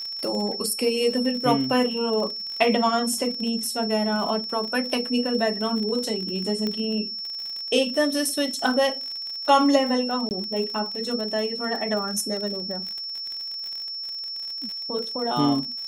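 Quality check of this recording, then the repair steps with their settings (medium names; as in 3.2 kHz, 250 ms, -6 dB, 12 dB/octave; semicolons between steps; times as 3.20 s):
crackle 50 per s -30 dBFS
whine 5.4 kHz -30 dBFS
6.67 s: pop -15 dBFS
10.29–10.31 s: dropout 19 ms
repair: de-click; band-stop 5.4 kHz, Q 30; interpolate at 10.29 s, 19 ms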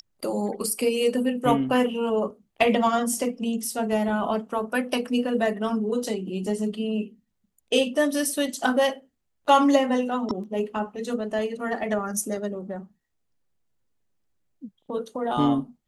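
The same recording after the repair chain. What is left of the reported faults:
6.67 s: pop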